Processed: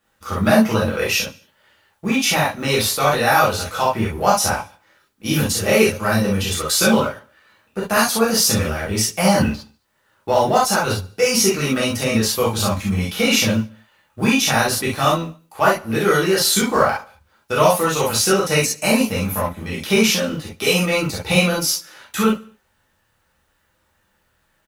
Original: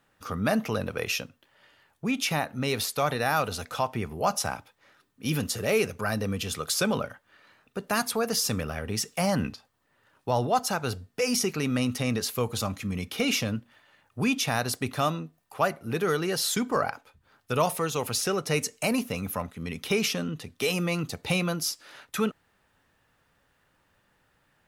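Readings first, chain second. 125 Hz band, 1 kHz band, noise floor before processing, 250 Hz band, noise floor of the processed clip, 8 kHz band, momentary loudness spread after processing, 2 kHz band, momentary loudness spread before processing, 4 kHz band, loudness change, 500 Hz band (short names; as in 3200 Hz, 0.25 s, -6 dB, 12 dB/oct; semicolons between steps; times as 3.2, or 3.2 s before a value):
+8.5 dB, +10.5 dB, -70 dBFS, +10.0 dB, -65 dBFS, +11.0 dB, 8 LU, +11.0 dB, 8 LU, +10.5 dB, +10.0 dB, +10.5 dB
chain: G.711 law mismatch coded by A; feedback echo 73 ms, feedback 50%, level -22.5 dB; non-linear reverb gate 90 ms flat, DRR -6.5 dB; gain +4 dB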